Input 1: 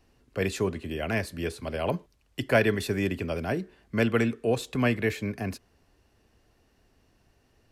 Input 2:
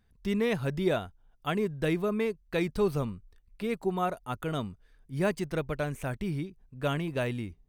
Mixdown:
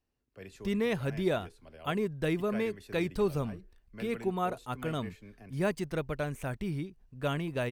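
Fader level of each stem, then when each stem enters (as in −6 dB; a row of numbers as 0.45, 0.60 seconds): −20.0, −2.0 decibels; 0.00, 0.40 seconds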